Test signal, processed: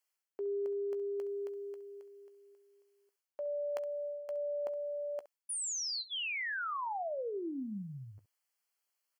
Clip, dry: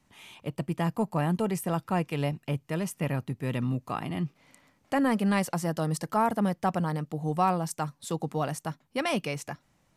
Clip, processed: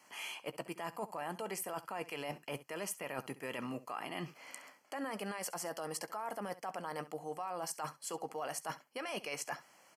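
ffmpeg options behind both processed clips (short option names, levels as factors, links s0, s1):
-filter_complex "[0:a]highpass=540,alimiter=level_in=1.5:limit=0.0631:level=0:latency=1:release=22,volume=0.668,areverse,acompressor=threshold=0.00447:ratio=6,areverse,asuperstop=centerf=3700:order=8:qfactor=5.6,asplit=2[s0][s1];[s1]aecho=0:1:15|67:0.178|0.141[s2];[s0][s2]amix=inputs=2:normalize=0,volume=2.82"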